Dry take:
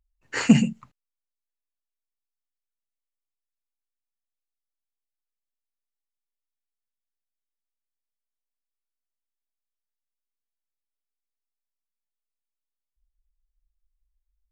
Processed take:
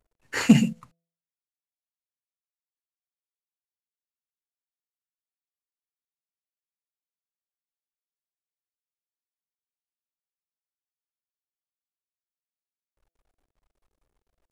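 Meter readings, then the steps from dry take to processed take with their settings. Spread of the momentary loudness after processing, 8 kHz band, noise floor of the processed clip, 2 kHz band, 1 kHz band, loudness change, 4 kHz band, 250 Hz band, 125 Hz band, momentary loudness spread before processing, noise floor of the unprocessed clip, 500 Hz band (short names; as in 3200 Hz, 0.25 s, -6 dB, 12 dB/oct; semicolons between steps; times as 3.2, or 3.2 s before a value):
12 LU, -0.5 dB, under -85 dBFS, 0.0 dB, 0.0 dB, 0.0 dB, 0.0 dB, 0.0 dB, -0.5 dB, 12 LU, under -85 dBFS, 0.0 dB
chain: CVSD 64 kbps; de-hum 167.6 Hz, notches 4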